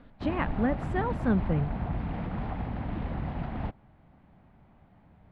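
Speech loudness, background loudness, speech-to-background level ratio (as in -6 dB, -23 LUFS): -30.5 LUFS, -34.5 LUFS, 4.0 dB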